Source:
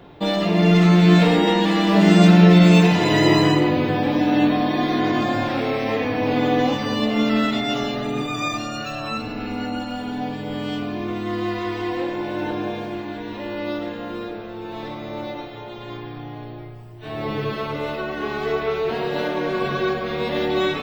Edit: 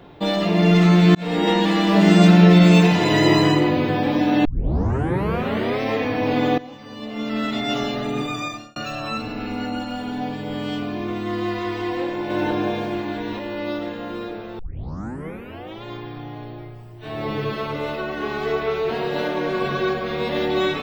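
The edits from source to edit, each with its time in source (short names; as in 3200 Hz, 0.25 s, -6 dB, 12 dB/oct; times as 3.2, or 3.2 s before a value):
1.15–1.5 fade in
4.45 tape start 1.36 s
6.58–7.72 fade in quadratic, from -18.5 dB
8.29–8.76 fade out
12.3–13.39 gain +3.5 dB
14.59 tape start 1.24 s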